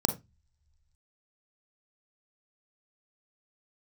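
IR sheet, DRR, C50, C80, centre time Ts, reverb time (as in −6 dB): 6.5 dB, 11.5 dB, 19.5 dB, 11 ms, non-exponential decay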